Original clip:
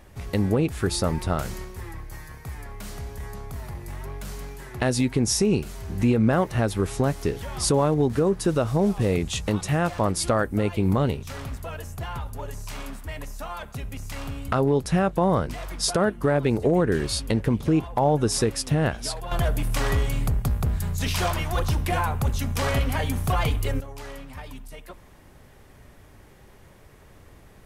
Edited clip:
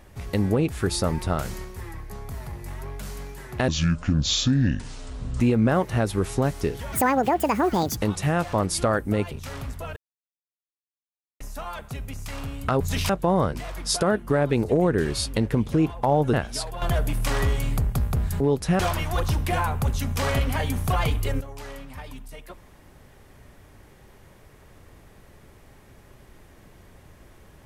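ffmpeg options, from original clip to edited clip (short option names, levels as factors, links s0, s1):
-filter_complex "[0:a]asplit=14[s0][s1][s2][s3][s4][s5][s6][s7][s8][s9][s10][s11][s12][s13];[s0]atrim=end=2.102[s14];[s1]atrim=start=3.318:end=4.904[s15];[s2]atrim=start=4.9:end=6.02,asetpts=PTS-STARTPTS,asetrate=28665,aresample=44100[s16];[s3]atrim=start=6.016:end=7.544[s17];[s4]atrim=start=7.54:end=9.43,asetpts=PTS-STARTPTS,asetrate=79380,aresample=44100[s18];[s5]atrim=start=9.426:end=10.772[s19];[s6]atrim=start=11.148:end=11.8,asetpts=PTS-STARTPTS,afade=t=out:st=0.648:d=0.004:c=hsin[s20];[s7]atrim=start=11.8:end=13.24,asetpts=PTS-STARTPTS,volume=0[s21];[s8]atrim=start=13.24:end=14.642,asetpts=PTS-STARTPTS,afade=t=in:d=0.004:c=hsin[s22];[s9]atrim=start=20.898:end=21.192[s23];[s10]atrim=start=15.028:end=18.272[s24];[s11]atrim=start=18.828:end=20.902[s25];[s12]atrim=start=14.638:end=15.032[s26];[s13]atrim=start=21.188[s27];[s14][s15]acrossfade=d=0.004:c1=hsin:c2=hsin[s28];[s28][s16]acrossfade=d=0.004:c1=hsin:c2=hsin[s29];[s29][s17]acrossfade=d=0.004:c1=hsin:c2=hsin[s30];[s30][s18]acrossfade=d=0.004:c1=hsin:c2=hsin[s31];[s31][s19]acrossfade=d=0.004:c1=hsin:c2=hsin[s32];[s20][s21][s22]concat=n=3:v=0:a=1[s33];[s32][s33]acrossfade=d=0.004:c1=hsin:c2=hsin[s34];[s34][s23]acrossfade=d=0.004:c1=hsin:c2=hsin[s35];[s35][s24]acrossfade=d=0.004:c1=hsin:c2=hsin[s36];[s36][s25]acrossfade=d=0.004:c1=hsin:c2=hsin[s37];[s37][s26]acrossfade=d=0.004:c1=hsin:c2=hsin[s38];[s38][s27]acrossfade=d=0.004:c1=hsin:c2=hsin"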